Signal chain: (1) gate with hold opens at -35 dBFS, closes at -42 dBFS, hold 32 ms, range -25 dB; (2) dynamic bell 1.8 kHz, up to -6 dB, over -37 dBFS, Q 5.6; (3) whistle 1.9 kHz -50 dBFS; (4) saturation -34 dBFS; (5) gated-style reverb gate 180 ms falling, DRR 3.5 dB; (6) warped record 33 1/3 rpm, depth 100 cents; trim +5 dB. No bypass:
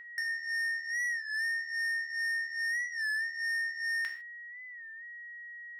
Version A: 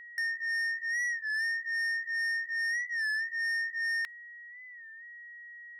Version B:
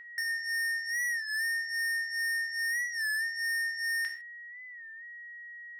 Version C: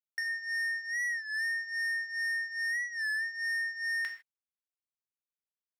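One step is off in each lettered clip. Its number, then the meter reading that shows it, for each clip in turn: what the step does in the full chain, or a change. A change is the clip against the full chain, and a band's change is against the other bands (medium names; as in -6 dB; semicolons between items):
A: 5, loudness change +1.5 LU; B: 2, momentary loudness spread change +2 LU; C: 3, momentary loudness spread change -11 LU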